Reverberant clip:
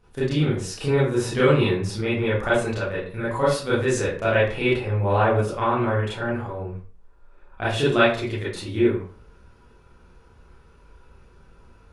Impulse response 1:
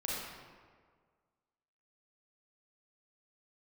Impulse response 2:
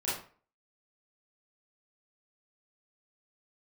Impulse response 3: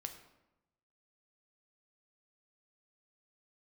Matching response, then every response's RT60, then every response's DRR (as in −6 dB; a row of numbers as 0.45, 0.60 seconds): 2; 1.7, 0.45, 0.95 seconds; −6.0, −10.0, 5.5 decibels